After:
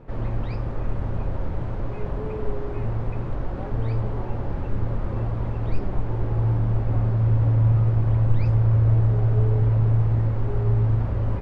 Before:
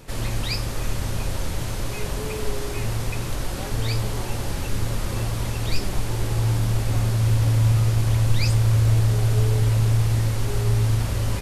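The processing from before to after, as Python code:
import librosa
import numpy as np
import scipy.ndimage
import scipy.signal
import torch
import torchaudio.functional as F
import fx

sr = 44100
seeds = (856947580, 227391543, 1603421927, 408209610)

y = scipy.signal.sosfilt(scipy.signal.butter(2, 1100.0, 'lowpass', fs=sr, output='sos'), x)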